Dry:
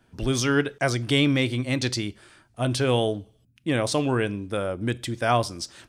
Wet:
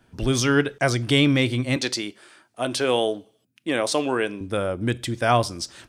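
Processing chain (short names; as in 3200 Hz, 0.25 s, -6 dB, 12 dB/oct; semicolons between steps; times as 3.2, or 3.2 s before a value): 1.76–4.41 HPF 300 Hz 12 dB/oct; gain +2.5 dB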